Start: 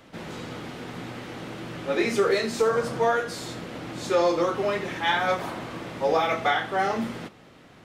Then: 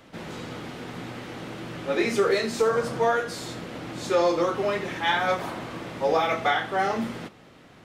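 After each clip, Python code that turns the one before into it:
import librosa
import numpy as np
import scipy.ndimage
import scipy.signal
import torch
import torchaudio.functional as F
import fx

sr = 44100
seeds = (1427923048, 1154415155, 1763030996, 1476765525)

y = x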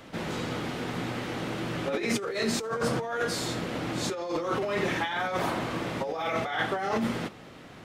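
y = fx.over_compress(x, sr, threshold_db=-29.0, ratio=-1.0)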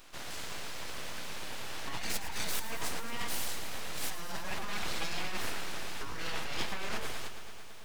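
y = fx.tilt_eq(x, sr, slope=2.5)
y = np.abs(y)
y = fx.echo_crushed(y, sr, ms=110, feedback_pct=80, bits=8, wet_db=-12)
y = F.gain(torch.from_numpy(y), -5.0).numpy()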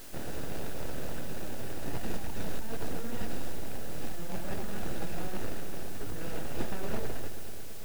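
y = scipy.ndimage.median_filter(x, 41, mode='constant')
y = fx.rider(y, sr, range_db=4, speed_s=2.0)
y = fx.dmg_noise_colour(y, sr, seeds[0], colour='white', level_db=-58.0)
y = F.gain(torch.from_numpy(y), 7.5).numpy()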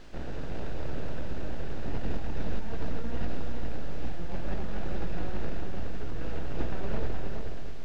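y = fx.octave_divider(x, sr, octaves=2, level_db=3.0)
y = fx.air_absorb(y, sr, metres=160.0)
y = y + 10.0 ** (-5.5 / 20.0) * np.pad(y, (int(419 * sr / 1000.0), 0))[:len(y)]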